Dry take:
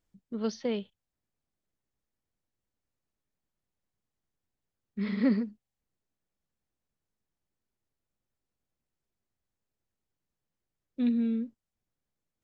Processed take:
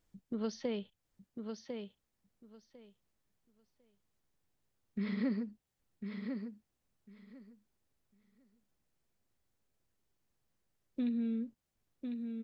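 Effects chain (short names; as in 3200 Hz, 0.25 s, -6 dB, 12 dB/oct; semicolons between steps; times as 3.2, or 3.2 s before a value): compressor 2.5:1, threshold -41 dBFS, peak gain reduction 13 dB; on a send: feedback echo 1.05 s, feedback 17%, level -6 dB; on the sum: gain +3.5 dB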